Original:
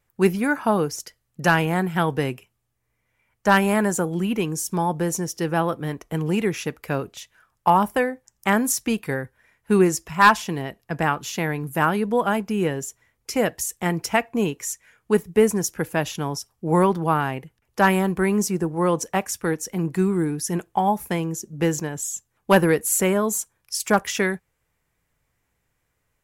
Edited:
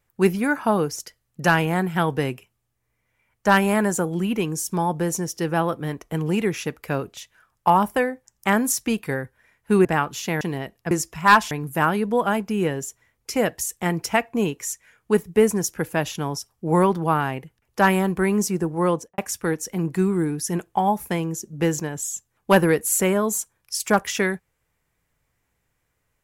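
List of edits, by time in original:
9.85–10.45 swap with 10.95–11.51
18.88–19.18 studio fade out

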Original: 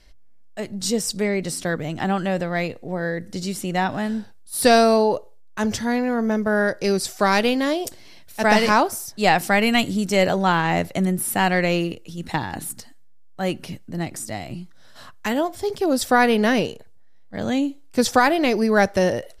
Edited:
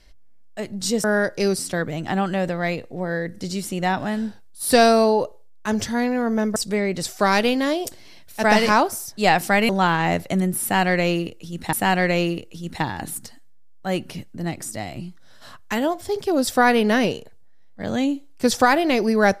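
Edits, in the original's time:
1.04–1.51 swap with 6.48–7.03
9.69–10.34 cut
11.27–12.38 loop, 2 plays

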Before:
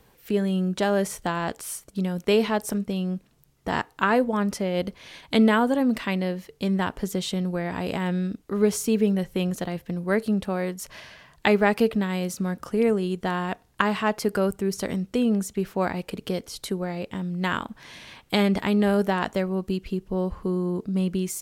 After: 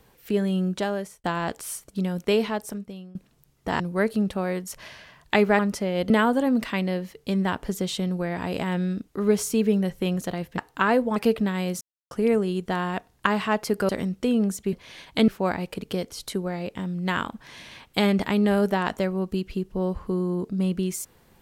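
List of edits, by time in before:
0.67–1.24 fade out
2.19–3.15 fade out, to -22 dB
3.8–4.38 swap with 9.92–11.71
4.89–5.44 move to 15.64
12.36–12.66 mute
14.44–14.8 cut

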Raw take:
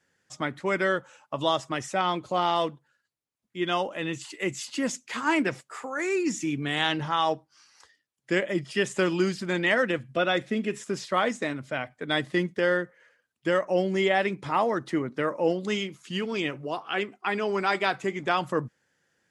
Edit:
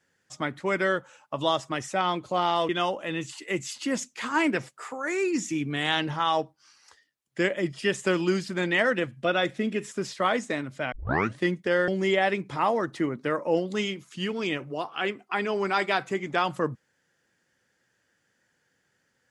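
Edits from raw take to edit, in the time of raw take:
2.69–3.61 cut
11.84 tape start 0.46 s
12.8–13.81 cut

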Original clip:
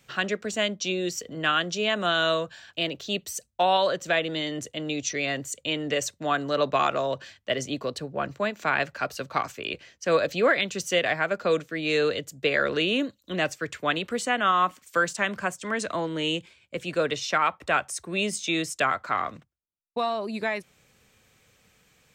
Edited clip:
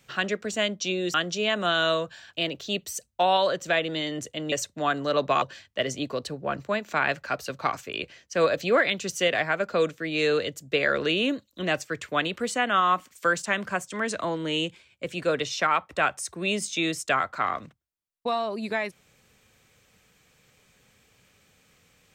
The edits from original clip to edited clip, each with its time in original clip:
1.14–1.54 cut
4.92–5.96 cut
6.86–7.13 cut

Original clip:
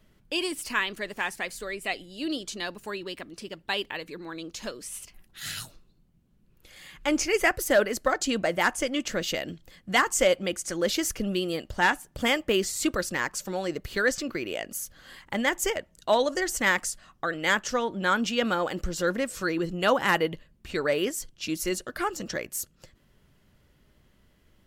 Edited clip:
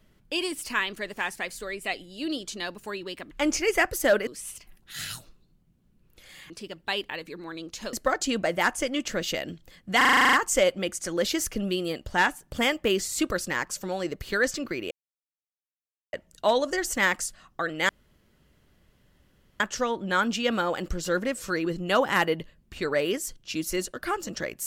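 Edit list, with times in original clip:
3.31–4.74 swap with 6.97–7.93
9.97 stutter 0.04 s, 10 plays
14.55–15.77 mute
17.53 insert room tone 1.71 s

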